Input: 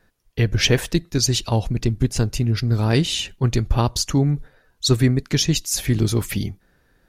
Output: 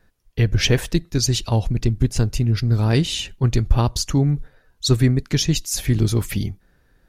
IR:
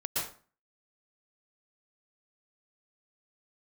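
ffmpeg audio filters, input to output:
-af "lowshelf=f=110:g=6.5,volume=-1.5dB"

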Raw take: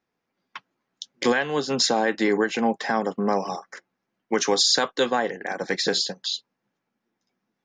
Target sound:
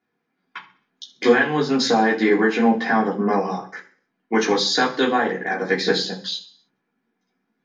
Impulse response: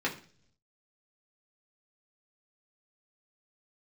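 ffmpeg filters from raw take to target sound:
-filter_complex "[0:a]asettb=1/sr,asplit=3[a][b][c];[a]atrim=end=2.654[d];[b]atrim=start=2.65:end=4.69,asetpts=PTS-STARTPTS,afade=t=in:d=0.004:c=qsin,afade=t=out:st=2.036:d=0.004:c=qsin,lowpass=7.2k[e];[c]atrim=start=4.686[f];[d][e]acrossfade=d=0.004:c1=hsin:c2=qsin[g];[g][f]acrossfade=d=0.004:c1=qsin:c2=hsin[h];[1:a]atrim=start_sample=2205,afade=t=out:st=0.35:d=0.01,atrim=end_sample=15876,asetrate=40572,aresample=44100[i];[h][i]afir=irnorm=-1:irlink=0,volume=-4dB"

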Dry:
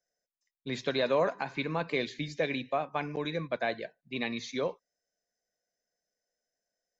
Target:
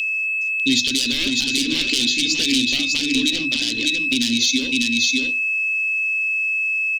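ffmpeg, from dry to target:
-af "aeval=exprs='val(0)+0.00891*sin(2*PI*2600*n/s)':c=same,aeval=exprs='0.15*sin(PI/2*3.16*val(0)/0.15)':c=same,acompressor=threshold=-25dB:ratio=2,tiltshelf=f=970:g=-3.5,bandreject=f=50:t=h:w=6,bandreject=f=100:t=h:w=6,bandreject=f=150:t=h:w=6,bandreject=f=200:t=h:w=6,bandreject=f=250:t=h:w=6,bandreject=f=300:t=h:w=6,bandreject=f=350:t=h:w=6,aecho=1:1:598:0.562,aeval=exprs='clip(val(0),-1,0.133)':c=same,firequalizer=gain_entry='entry(110,0);entry(160,-18);entry(250,9);entry(420,-13);entry(640,-28);entry(1300,-24);entry(3200,6)':delay=0.05:min_phase=1,alimiter=limit=-16dB:level=0:latency=1:release=181,volume=8.5dB"

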